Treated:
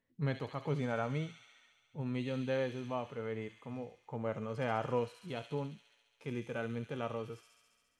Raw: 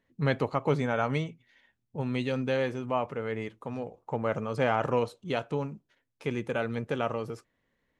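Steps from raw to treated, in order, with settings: thin delay 69 ms, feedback 79%, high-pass 4000 Hz, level -3.5 dB; harmonic-percussive split percussive -8 dB; gain -5.5 dB

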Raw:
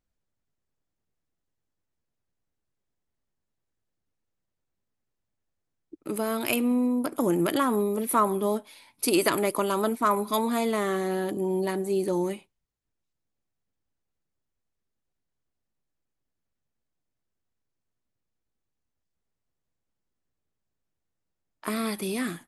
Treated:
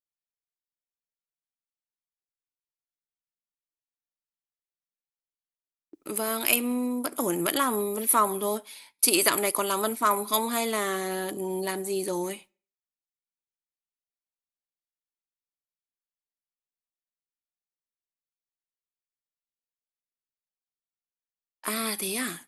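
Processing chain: gate with hold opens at -41 dBFS; tilt +2.5 dB/oct; on a send: reverb RT60 0.45 s, pre-delay 3 ms, DRR 24 dB

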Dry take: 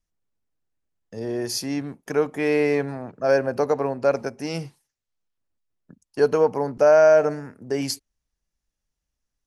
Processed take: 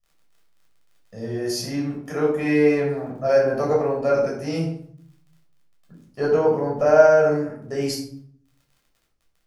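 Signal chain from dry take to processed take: 4.6–6.84 high shelf 8700 Hz -> 5400 Hz -10 dB; crackle 29/s -44 dBFS; shoebox room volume 840 m³, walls furnished, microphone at 6.2 m; gain -7.5 dB

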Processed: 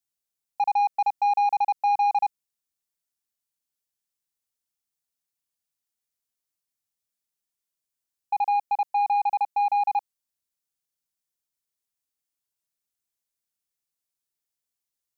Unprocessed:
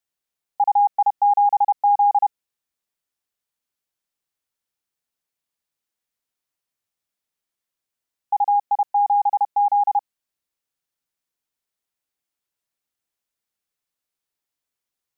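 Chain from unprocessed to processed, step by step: tone controls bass +4 dB, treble +8 dB; sample leveller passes 1; gain -6 dB

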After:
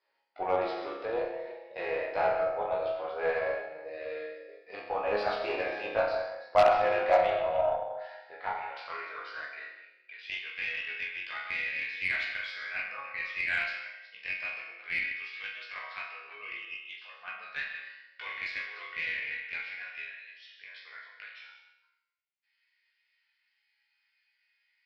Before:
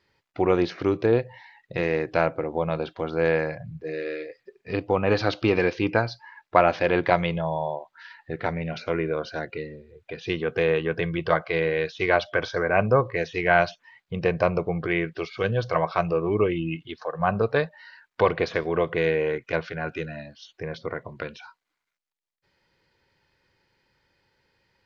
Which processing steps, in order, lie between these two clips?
reverse delay 0.19 s, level -12 dB; high-pass sweep 640 Hz -> 2200 Hz, 7.84–10.28; chorus 2.2 Hz, delay 17 ms, depth 3.8 ms; resonator bank C#2 sus4, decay 0.76 s; in parallel at -8 dB: wrapped overs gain 22 dB; on the sum: elliptic low-pass 5100 Hz; digital reverb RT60 0.67 s, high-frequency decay 0.3×, pre-delay 90 ms, DRR 9.5 dB; added harmonics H 8 -31 dB, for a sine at -19 dBFS; gain +8 dB

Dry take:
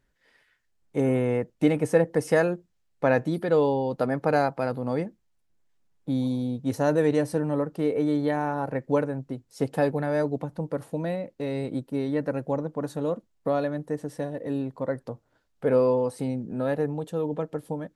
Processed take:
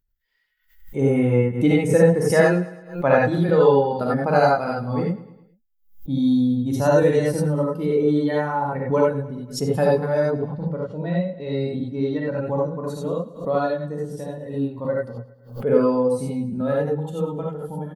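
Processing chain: per-bin expansion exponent 1.5; 10.2–12.44 LPF 3800 Hz -> 7800 Hz 24 dB/oct; feedback echo 0.107 s, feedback 50%, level -17 dB; non-linear reverb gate 0.11 s rising, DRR -3.5 dB; backwards sustainer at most 130 dB/s; gain +3.5 dB

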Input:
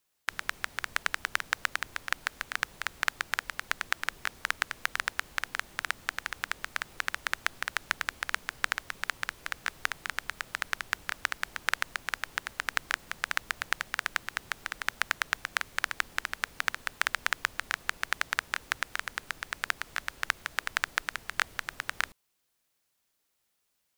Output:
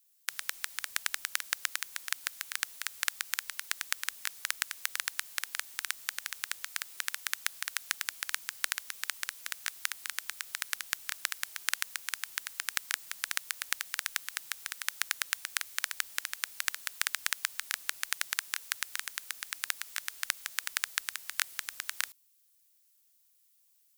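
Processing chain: pre-emphasis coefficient 0.97; gain +6.5 dB

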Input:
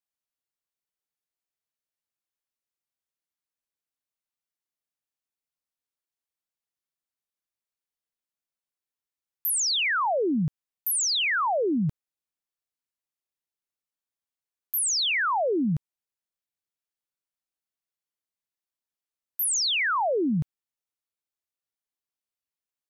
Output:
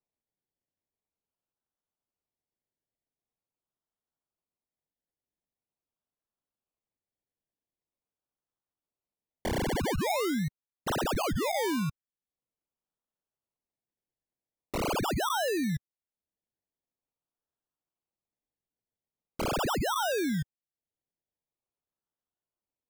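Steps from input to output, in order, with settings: reverb removal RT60 0.91 s; decimation with a swept rate 27×, swing 60% 0.44 Hz; gain -4.5 dB

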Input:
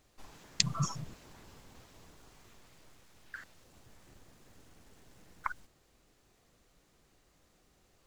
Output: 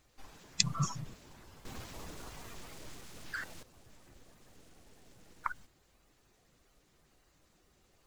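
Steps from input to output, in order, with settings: bin magnitudes rounded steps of 15 dB; 1.65–3.63 sample leveller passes 3

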